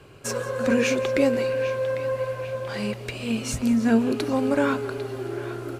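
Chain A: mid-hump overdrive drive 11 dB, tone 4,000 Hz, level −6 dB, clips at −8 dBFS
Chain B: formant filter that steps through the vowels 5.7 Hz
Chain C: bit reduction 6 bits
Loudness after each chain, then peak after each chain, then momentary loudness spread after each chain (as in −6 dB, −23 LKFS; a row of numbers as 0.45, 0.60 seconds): −23.5, −32.0, −24.5 LKFS; −8.5, −14.5, −8.0 dBFS; 9, 17, 9 LU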